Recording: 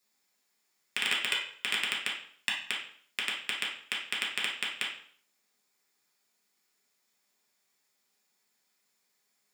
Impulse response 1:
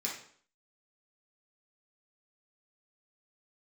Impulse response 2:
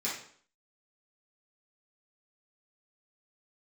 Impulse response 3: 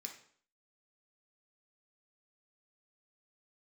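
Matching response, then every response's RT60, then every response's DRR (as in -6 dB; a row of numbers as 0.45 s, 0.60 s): 1; 0.55 s, 0.55 s, 0.55 s; -4.5 dB, -9.0 dB, 1.5 dB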